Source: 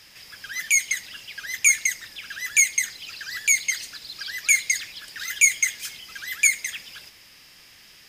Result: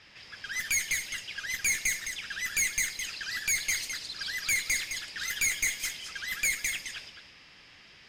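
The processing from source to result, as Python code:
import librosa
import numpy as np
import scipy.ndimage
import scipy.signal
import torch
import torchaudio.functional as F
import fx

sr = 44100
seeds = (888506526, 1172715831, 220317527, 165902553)

y = fx.tube_stage(x, sr, drive_db=24.0, bias=0.4)
y = y + 10.0 ** (-6.5 / 20.0) * np.pad(y, (int(212 * sr / 1000.0), 0))[:len(y)]
y = fx.env_lowpass(y, sr, base_hz=3000.0, full_db=-29.5)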